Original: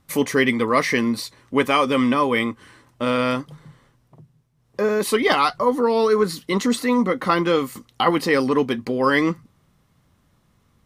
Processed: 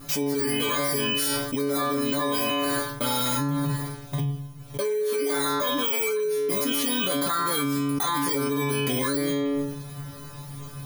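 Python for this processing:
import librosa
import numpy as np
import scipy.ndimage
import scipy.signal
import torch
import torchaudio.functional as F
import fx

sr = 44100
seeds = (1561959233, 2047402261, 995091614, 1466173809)

y = fx.bit_reversed(x, sr, seeds[0], block=16)
y = fx.stiff_resonator(y, sr, f0_hz=140.0, decay_s=0.73, stiffness=0.002)
y = fx.env_flatten(y, sr, amount_pct=100)
y = y * 10.0 ** (-2.0 / 20.0)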